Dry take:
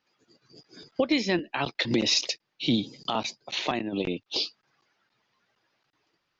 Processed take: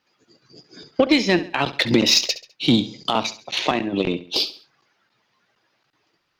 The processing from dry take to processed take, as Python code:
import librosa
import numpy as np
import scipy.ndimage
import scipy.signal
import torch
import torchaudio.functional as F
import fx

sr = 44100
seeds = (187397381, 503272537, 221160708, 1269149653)

y = fx.cheby_harmonics(x, sr, harmonics=(4, 6, 7, 8), levels_db=(-32, -25, -29, -29), full_scale_db=-11.0)
y = fx.echo_feedback(y, sr, ms=68, feedback_pct=37, wet_db=-15.0)
y = y * 10.0 ** (8.0 / 20.0)